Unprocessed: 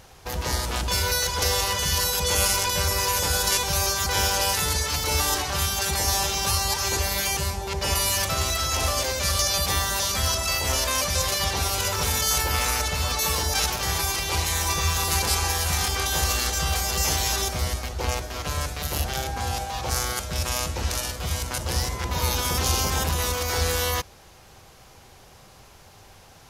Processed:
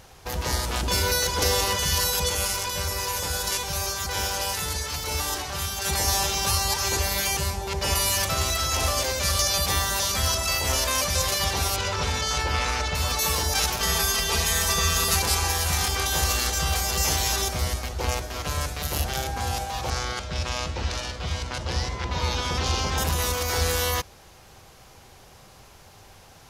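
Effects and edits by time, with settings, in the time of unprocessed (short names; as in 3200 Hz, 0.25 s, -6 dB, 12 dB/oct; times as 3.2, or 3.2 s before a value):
0.83–1.76 bell 290 Hz +6.5 dB 1.3 oct
2.29–5.85 flange 1.7 Hz, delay 0.3 ms, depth 8.5 ms, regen -87%
11.76–12.95 LPF 4900 Hz
13.8–15.16 comb 4.5 ms, depth 85%
19.9–22.98 Chebyshev low-pass 4300 Hz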